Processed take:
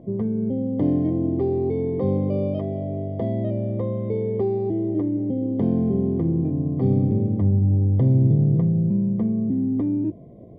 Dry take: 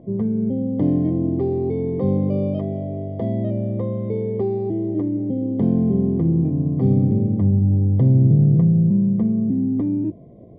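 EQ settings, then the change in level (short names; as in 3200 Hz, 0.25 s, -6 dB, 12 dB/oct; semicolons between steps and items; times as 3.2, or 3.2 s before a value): dynamic EQ 170 Hz, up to -5 dB, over -29 dBFS, Q 1.5; 0.0 dB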